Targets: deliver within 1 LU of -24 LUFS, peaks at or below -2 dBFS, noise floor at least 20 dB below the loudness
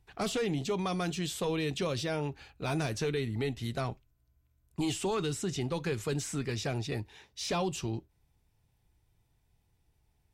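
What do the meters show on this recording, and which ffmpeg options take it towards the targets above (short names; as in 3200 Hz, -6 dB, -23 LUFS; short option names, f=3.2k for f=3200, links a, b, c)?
loudness -34.0 LUFS; peak -23.0 dBFS; loudness target -24.0 LUFS
-> -af "volume=10dB"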